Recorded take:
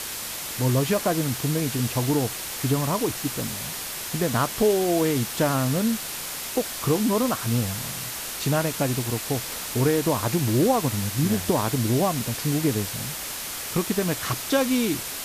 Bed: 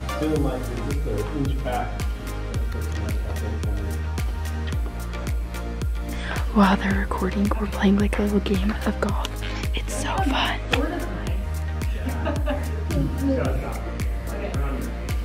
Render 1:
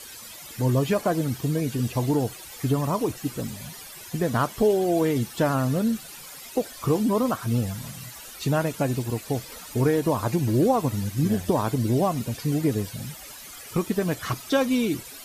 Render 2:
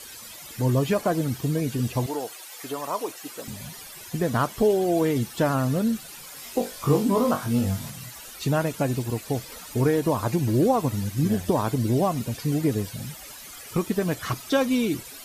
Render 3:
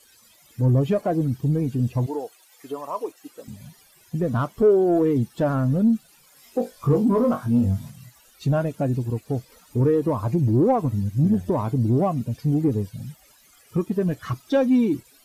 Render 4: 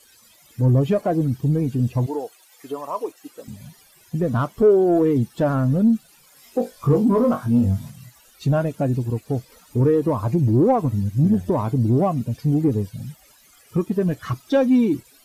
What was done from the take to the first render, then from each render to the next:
denoiser 14 dB, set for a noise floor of -33 dBFS
2.06–3.48 HPF 510 Hz; 6.34–7.9 flutter echo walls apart 3.6 m, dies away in 0.24 s
sample leveller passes 2; spectral expander 1.5:1
gain +2 dB

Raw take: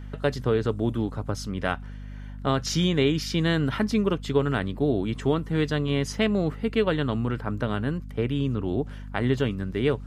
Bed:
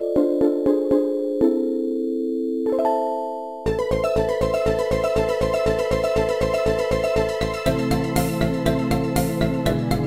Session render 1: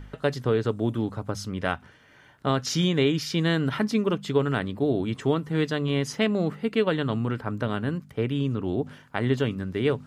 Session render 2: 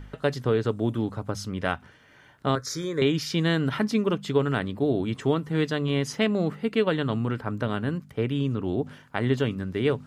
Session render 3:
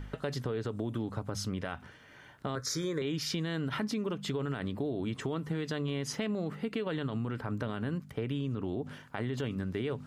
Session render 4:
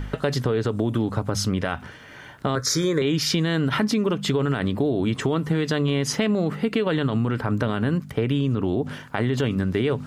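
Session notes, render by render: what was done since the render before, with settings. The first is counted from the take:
de-hum 50 Hz, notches 5
2.55–3.02 fixed phaser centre 780 Hz, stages 6
limiter -20.5 dBFS, peak gain reduction 11 dB; compressor, threshold -30 dBFS, peak gain reduction 6 dB
gain +11.5 dB

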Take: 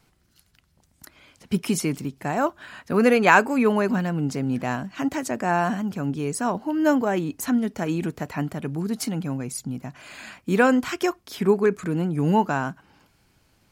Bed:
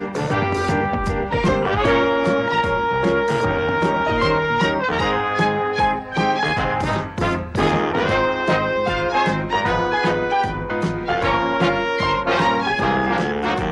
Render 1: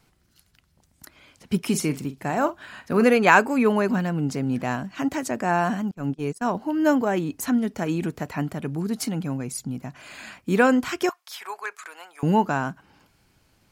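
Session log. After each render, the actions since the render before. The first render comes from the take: 1.66–3.04 doubler 45 ms -13 dB; 5.91–6.5 gate -28 dBFS, range -28 dB; 11.09–12.23 HPF 810 Hz 24 dB/oct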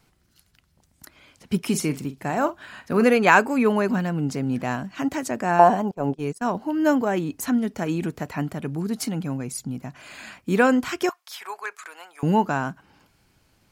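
5.59–6.16 band shelf 610 Hz +12.5 dB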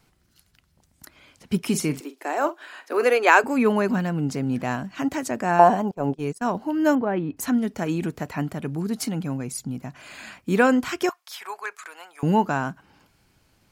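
2–3.44 steep high-pass 300 Hz 48 dB/oct; 6.95–7.37 air absorption 410 m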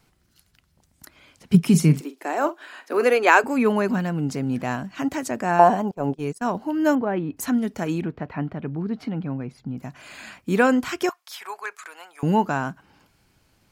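1.54–3.38 bell 160 Hz +14.5 dB; 8.01–9.78 air absorption 350 m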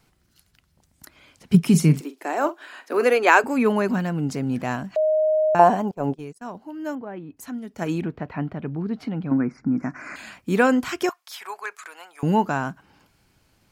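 4.96–5.55 bleep 622 Hz -16.5 dBFS; 6.18–7.82 dip -10.5 dB, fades 0.35 s exponential; 9.31–10.16 EQ curve 130 Hz 0 dB, 290 Hz +13 dB, 420 Hz +4 dB, 820 Hz +4 dB, 1400 Hz +13 dB, 2300 Hz +6 dB, 3300 Hz -27 dB, 5400 Hz +4 dB, 9100 Hz -9 dB, 15000 Hz -24 dB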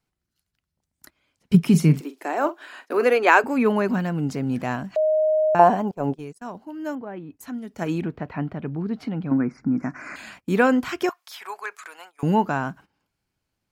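gate -45 dBFS, range -17 dB; dynamic EQ 8500 Hz, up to -6 dB, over -46 dBFS, Q 0.73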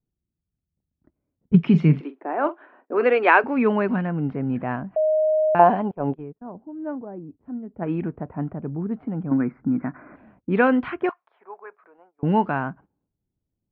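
LPF 3000 Hz 24 dB/oct; low-pass opened by the level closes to 370 Hz, open at -14.5 dBFS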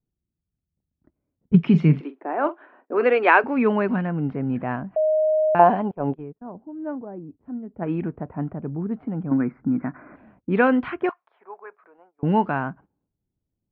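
nothing audible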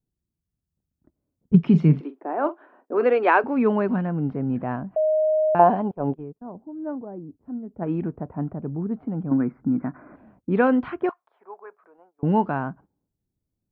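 bell 2300 Hz -7.5 dB 1.4 oct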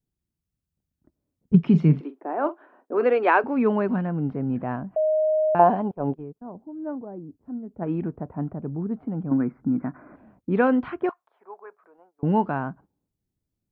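gain -1 dB

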